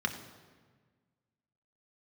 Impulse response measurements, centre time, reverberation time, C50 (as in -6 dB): 18 ms, 1.5 s, 9.5 dB